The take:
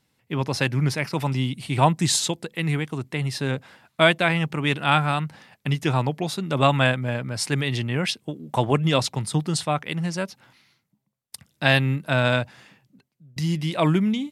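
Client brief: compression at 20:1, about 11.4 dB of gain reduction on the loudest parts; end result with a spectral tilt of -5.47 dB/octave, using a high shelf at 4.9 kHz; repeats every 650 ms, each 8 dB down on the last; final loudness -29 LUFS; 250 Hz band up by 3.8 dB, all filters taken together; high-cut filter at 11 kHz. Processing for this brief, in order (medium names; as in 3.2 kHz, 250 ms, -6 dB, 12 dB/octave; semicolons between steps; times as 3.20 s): low-pass 11 kHz; peaking EQ 250 Hz +5.5 dB; treble shelf 4.9 kHz -3.5 dB; compression 20:1, threshold -22 dBFS; feedback delay 650 ms, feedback 40%, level -8 dB; trim -0.5 dB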